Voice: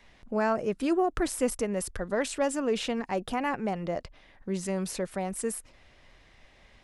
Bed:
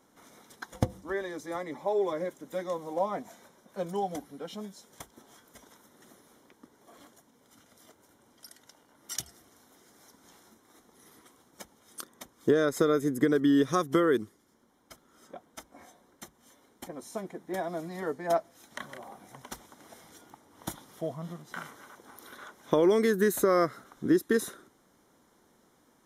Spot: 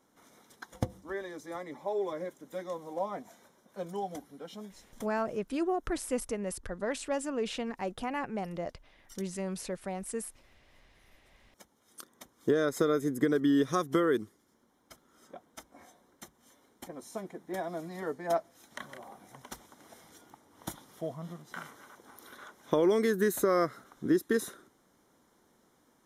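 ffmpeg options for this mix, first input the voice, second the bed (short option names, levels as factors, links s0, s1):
-filter_complex "[0:a]adelay=4700,volume=0.562[s0];[1:a]volume=2.51,afade=t=out:st=5.2:d=0.26:silence=0.298538,afade=t=in:st=11.23:d=1.42:silence=0.237137[s1];[s0][s1]amix=inputs=2:normalize=0"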